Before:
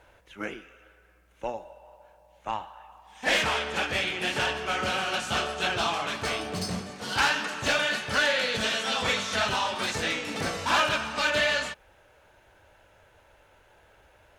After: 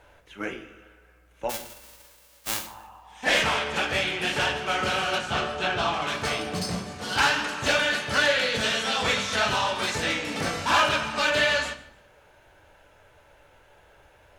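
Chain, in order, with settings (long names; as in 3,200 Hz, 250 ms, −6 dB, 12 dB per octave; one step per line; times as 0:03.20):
0:01.49–0:02.66: spectral envelope flattened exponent 0.1
0:05.18–0:06.02: low-pass filter 3,100 Hz 6 dB per octave
feedback echo with a high-pass in the loop 149 ms, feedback 29%, level −21.5 dB
rectangular room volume 92 cubic metres, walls mixed, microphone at 0.35 metres
level +1.5 dB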